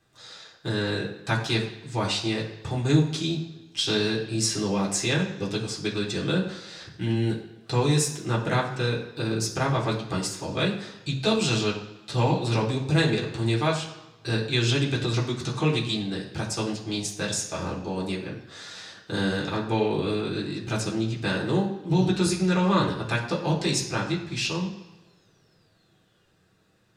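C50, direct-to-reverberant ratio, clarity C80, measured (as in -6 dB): 7.5 dB, -4.0 dB, 10.5 dB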